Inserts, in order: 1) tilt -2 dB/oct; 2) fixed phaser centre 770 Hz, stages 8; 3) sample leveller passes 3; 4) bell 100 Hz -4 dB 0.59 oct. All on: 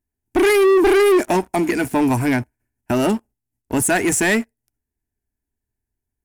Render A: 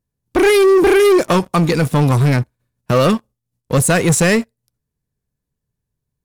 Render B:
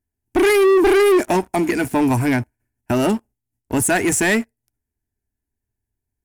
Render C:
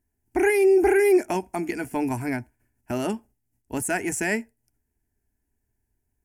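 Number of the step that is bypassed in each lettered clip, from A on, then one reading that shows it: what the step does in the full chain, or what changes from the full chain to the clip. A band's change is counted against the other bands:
2, 125 Hz band +10.0 dB; 4, 125 Hz band +1.5 dB; 3, crest factor change +6.0 dB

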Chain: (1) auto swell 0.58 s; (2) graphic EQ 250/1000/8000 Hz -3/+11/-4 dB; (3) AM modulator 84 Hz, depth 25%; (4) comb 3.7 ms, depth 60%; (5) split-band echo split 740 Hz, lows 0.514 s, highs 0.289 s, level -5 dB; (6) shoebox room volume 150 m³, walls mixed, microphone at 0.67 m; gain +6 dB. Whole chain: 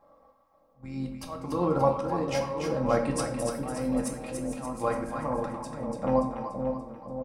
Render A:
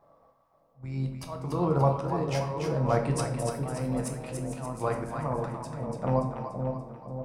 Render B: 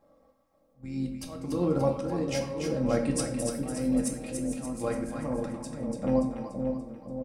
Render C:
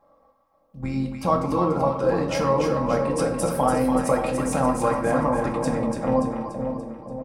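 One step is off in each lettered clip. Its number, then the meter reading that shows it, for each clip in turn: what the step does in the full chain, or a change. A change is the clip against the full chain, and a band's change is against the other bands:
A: 4, 125 Hz band +8.5 dB; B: 2, 1 kHz band -9.0 dB; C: 1, crest factor change -4.5 dB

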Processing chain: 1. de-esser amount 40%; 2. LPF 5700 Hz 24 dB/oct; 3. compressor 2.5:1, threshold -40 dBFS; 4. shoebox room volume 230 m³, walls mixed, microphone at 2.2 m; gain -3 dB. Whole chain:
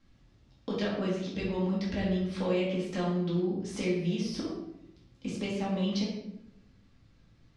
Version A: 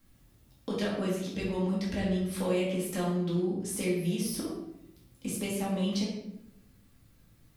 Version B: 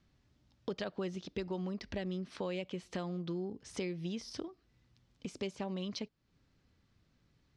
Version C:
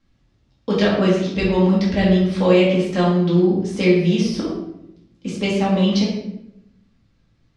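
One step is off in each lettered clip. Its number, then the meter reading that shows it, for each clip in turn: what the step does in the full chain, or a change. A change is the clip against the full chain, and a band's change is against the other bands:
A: 2, 8 kHz band +9.5 dB; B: 4, echo-to-direct 6.5 dB to none; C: 3, mean gain reduction 12.0 dB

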